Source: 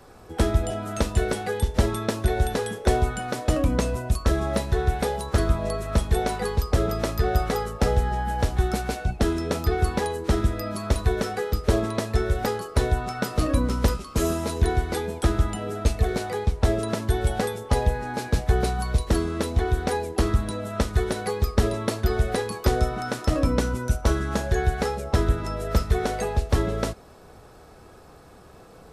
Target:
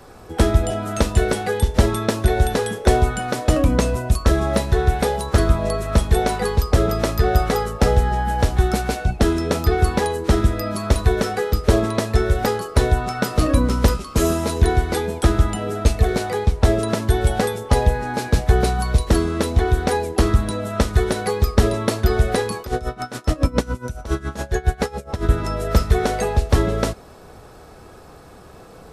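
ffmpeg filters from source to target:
-filter_complex "[0:a]asettb=1/sr,asplit=3[s0][s1][s2];[s0]atrim=end=22.614[s3];[s1]atrim=start=22.61:end=25.29,asetpts=PTS-STARTPTS,afade=t=in:d=0.004:c=qsin,afade=t=out:st=2.676:d=0.004:c=qsin,aeval=exprs='val(0)*pow(10,-19*(0.5-0.5*cos(2*PI*7.2*n/s))/20)':c=same[s4];[s2]atrim=start=25.286[s5];[s3][s4]acrossfade=d=0.004:c1=hsin:c2=qsin[s6];[s6][s5]acrossfade=d=0.004:c1=qsin:c2=hsin,volume=1.88"

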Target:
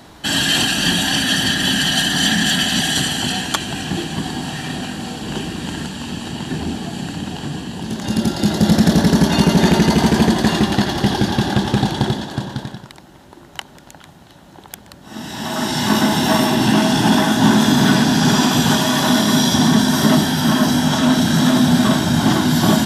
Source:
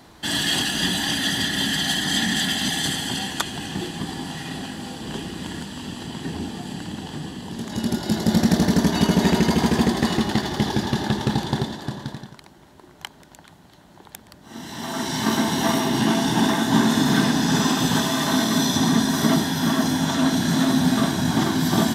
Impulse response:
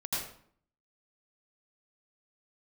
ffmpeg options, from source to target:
-af "asetrate=42336,aresample=44100,acontrast=56"

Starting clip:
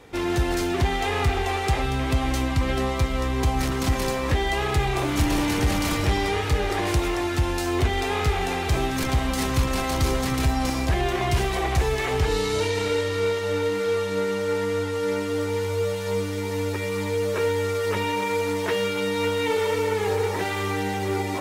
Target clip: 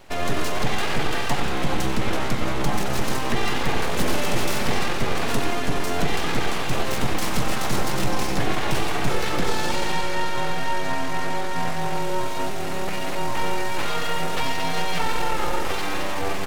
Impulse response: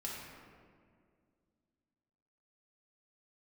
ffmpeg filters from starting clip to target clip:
-filter_complex "[0:a]aeval=exprs='abs(val(0))':c=same,atempo=1.3,bandreject=f=50:t=h:w=6,bandreject=f=100:t=h:w=6,bandreject=f=150:t=h:w=6,bandreject=f=200:t=h:w=6,asplit=2[s0][s1];[1:a]atrim=start_sample=2205,adelay=93[s2];[s1][s2]afir=irnorm=-1:irlink=0,volume=0.376[s3];[s0][s3]amix=inputs=2:normalize=0,volume=1.33"

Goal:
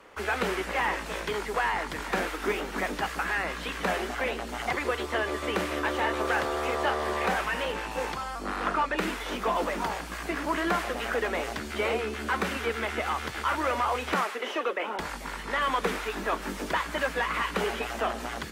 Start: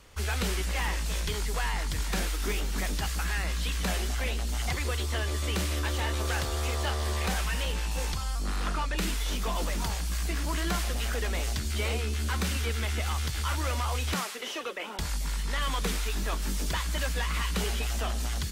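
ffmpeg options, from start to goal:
-filter_complex "[0:a]acrossover=split=240 2300:gain=0.0794 1 0.158[s0][s1][s2];[s0][s1][s2]amix=inputs=3:normalize=0,volume=2.51"

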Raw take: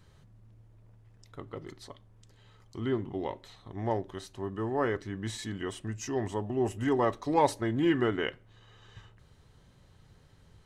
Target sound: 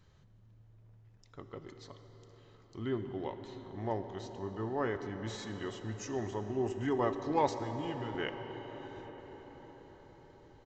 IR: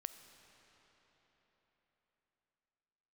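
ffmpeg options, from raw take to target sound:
-filter_complex "[0:a]asettb=1/sr,asplit=3[s0][s1][s2];[s0]atrim=end=7.484[s3];[s1]atrim=start=7.48:end=8.15,asetpts=PTS-STARTPTS,afade=t=in:d=0.004:c=qsin,afade=t=out:st=0.666:d=0.004:c=qsin,acrossover=split=150|3000[s4][s5][s6];[s5]acompressor=threshold=0.00891:ratio=3[s7];[s4][s7][s6]amix=inputs=3:normalize=0[s8];[s2]atrim=start=8.146[s9];[s3][s8]acrossfade=d=0.004:c1=hsin:c2=qsin[s10];[s10][s9]acrossfade=d=0.004:c1=qsin:c2=hsin[s11];[1:a]atrim=start_sample=2205,asetrate=26019,aresample=44100[s12];[s11][s12]afir=irnorm=-1:irlink=0,aresample=16000,aresample=44100,volume=0.668"

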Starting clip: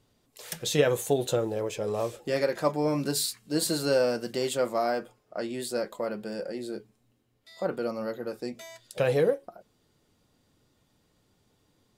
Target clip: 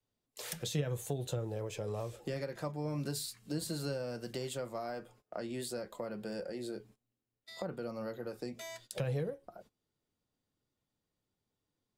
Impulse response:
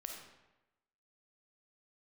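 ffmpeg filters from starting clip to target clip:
-filter_complex "[0:a]adynamicequalizer=threshold=0.00708:dfrequency=210:dqfactor=1.3:tfrequency=210:tqfactor=1.3:attack=5:release=100:ratio=0.375:range=2:mode=cutabove:tftype=bell,agate=range=0.1:threshold=0.00178:ratio=16:detection=peak,acrossover=split=160[s0][s1];[s1]acompressor=threshold=0.01:ratio=6[s2];[s0][s2]amix=inputs=2:normalize=0,volume=1.19"

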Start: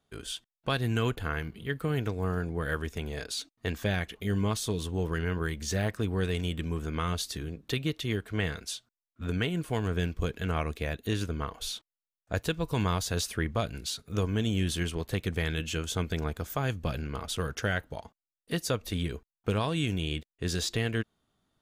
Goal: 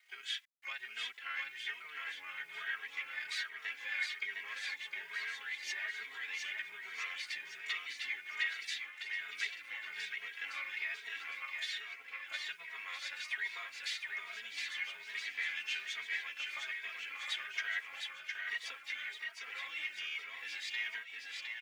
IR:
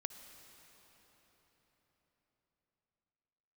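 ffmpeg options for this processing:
-filter_complex "[0:a]aemphasis=mode=reproduction:type=75fm,aecho=1:1:7.4:0.75,asplit=2[s0][s1];[s1]alimiter=limit=0.0668:level=0:latency=1:release=207,volume=1.26[s2];[s0][s2]amix=inputs=2:normalize=0,acompressor=threshold=0.0178:ratio=3,asplit=2[s3][s4];[s4]asetrate=88200,aresample=44100,atempo=0.5,volume=0.2[s5];[s3][s5]amix=inputs=2:normalize=0,adynamicsmooth=sensitivity=4:basefreq=7100,asplit=2[s6][s7];[s7]asetrate=22050,aresample=44100,atempo=2,volume=0.282[s8];[s6][s8]amix=inputs=2:normalize=0,acrusher=bits=10:mix=0:aa=0.000001,highpass=f=2100:t=q:w=5.7,aecho=1:1:710|1314|1826|2263|2633:0.631|0.398|0.251|0.158|0.1,asplit=2[s9][s10];[s10]adelay=2.8,afreqshift=1.2[s11];[s9][s11]amix=inputs=2:normalize=1,volume=0.891"

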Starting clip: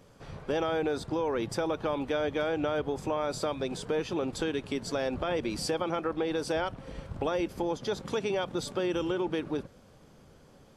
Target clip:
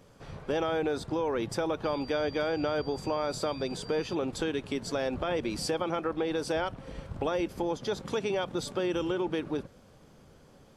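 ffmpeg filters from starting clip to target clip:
-filter_complex "[0:a]asettb=1/sr,asplit=3[s0][s1][s2];[s0]atrim=end=1.844[s3];[s1]atrim=start=1.84:end=4.15,asetpts=PTS-STARTPTS,afade=t=in:d=0.004:c=qsin,afade=t=out:st=2.306:d=0.004:c=qsin,aeval=exprs='val(0)+0.00398*sin(2*PI*4700*n/s)':c=same[s4];[s2]atrim=start=4.146[s5];[s3][s4]acrossfade=d=0.004:c1=hsin:c2=qsin[s6];[s6][s5]acrossfade=d=0.004:c1=qsin:c2=hsin"

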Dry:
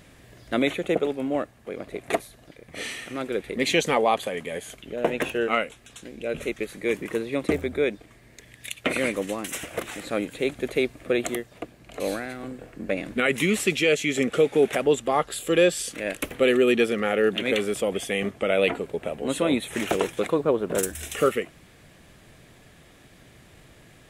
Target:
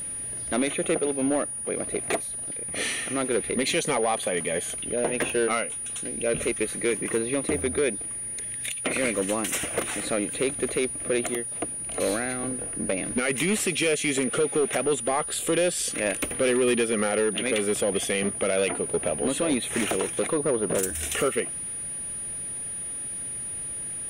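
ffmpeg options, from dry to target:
-af "alimiter=limit=0.133:level=0:latency=1:release=242,volume=13.3,asoftclip=hard,volume=0.075,aeval=exprs='val(0)+0.0178*sin(2*PI*9600*n/s)':c=same,volume=1.58"

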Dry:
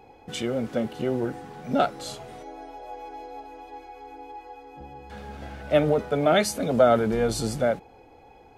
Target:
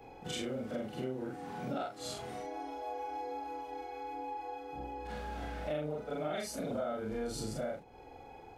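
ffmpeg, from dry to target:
-af "afftfilt=real='re':imag='-im':win_size=4096:overlap=0.75,acompressor=threshold=0.01:ratio=5,volume=1.58"

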